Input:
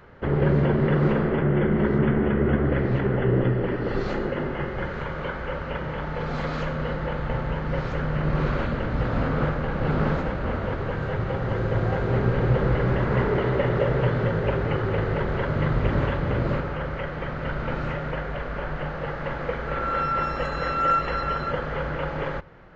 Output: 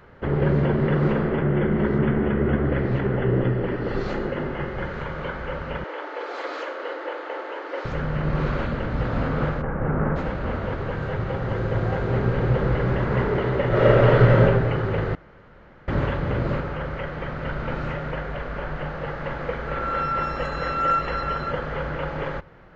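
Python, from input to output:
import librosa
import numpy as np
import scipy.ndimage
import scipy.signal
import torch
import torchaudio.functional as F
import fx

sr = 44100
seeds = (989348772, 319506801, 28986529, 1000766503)

y = fx.steep_highpass(x, sr, hz=290.0, slope=96, at=(5.84, 7.85))
y = fx.lowpass(y, sr, hz=1900.0, slope=24, at=(9.61, 10.15), fade=0.02)
y = fx.reverb_throw(y, sr, start_s=13.68, length_s=0.74, rt60_s=1.2, drr_db=-7.0)
y = fx.edit(y, sr, fx.room_tone_fill(start_s=15.15, length_s=0.73), tone=tone)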